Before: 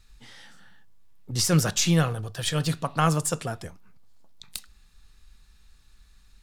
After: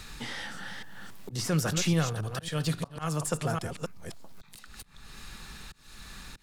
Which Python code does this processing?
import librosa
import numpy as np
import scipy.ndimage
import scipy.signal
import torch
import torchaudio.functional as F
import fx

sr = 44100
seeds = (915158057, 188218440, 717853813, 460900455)

y = fx.reverse_delay(x, sr, ms=276, wet_db=-11)
y = fx.auto_swell(y, sr, attack_ms=418.0)
y = fx.band_squash(y, sr, depth_pct=70)